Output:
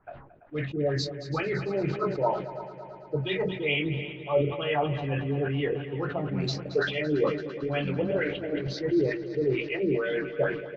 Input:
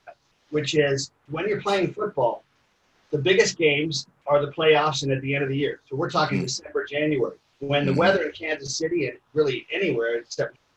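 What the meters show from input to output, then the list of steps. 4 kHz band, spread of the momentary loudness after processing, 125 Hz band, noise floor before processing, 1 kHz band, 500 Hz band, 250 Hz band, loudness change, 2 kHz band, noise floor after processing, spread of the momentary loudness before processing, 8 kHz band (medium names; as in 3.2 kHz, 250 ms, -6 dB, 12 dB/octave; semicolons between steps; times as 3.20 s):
-8.0 dB, 7 LU, -1.0 dB, -66 dBFS, -7.0 dB, -5.0 dB, -2.5 dB, -5.0 dB, -6.0 dB, -46 dBFS, 10 LU, no reading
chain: level-controlled noise filter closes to 1.1 kHz, open at -19.5 dBFS; tone controls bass +5 dB, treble -4 dB; reverse; compression 12:1, threshold -27 dBFS, peak gain reduction 16 dB; reverse; LFO low-pass sine 2.2 Hz 340–3800 Hz; doubling 21 ms -13 dB; on a send: multi-head delay 112 ms, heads second and third, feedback 60%, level -14.5 dB; on the sum: decay stretcher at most 78 dB/s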